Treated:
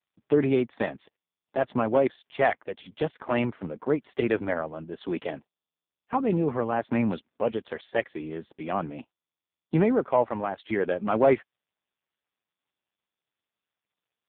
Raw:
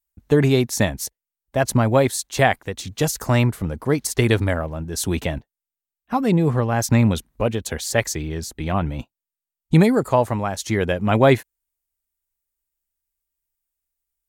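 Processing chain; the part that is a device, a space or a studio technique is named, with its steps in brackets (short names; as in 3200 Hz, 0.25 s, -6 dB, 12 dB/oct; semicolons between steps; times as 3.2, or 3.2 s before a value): telephone (BPF 250–3300 Hz; soft clip -6.5 dBFS, distortion -21 dB; gain -2.5 dB; AMR-NB 5.15 kbps 8000 Hz)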